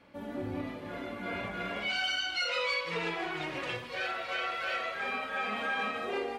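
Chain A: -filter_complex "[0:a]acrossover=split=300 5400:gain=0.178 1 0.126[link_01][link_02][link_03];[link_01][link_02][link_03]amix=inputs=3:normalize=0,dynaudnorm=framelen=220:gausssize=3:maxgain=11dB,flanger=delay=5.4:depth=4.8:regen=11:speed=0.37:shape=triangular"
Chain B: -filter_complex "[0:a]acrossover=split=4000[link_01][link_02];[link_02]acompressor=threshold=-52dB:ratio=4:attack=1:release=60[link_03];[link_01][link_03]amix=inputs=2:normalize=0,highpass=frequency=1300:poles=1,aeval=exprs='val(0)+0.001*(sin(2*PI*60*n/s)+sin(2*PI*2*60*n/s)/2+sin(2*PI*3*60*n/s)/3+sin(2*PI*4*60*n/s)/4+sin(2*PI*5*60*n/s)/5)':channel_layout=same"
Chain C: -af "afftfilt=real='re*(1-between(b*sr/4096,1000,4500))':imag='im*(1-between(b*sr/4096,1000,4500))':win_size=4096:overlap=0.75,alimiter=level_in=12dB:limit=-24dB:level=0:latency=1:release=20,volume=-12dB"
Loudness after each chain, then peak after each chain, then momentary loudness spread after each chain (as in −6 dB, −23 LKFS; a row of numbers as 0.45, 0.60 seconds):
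−26.0, −35.5, −44.0 LKFS; −12.5, −24.0, −36.0 dBFS; 11, 14, 2 LU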